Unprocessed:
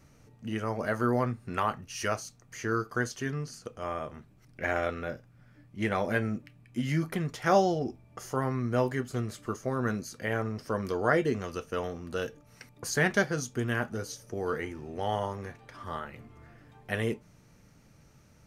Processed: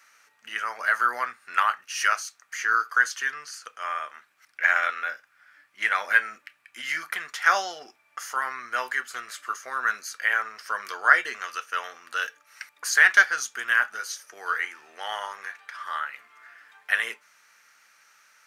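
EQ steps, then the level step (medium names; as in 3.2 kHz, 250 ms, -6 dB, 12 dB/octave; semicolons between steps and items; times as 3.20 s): resonant high-pass 1.5 kHz, resonance Q 2.2; +6.5 dB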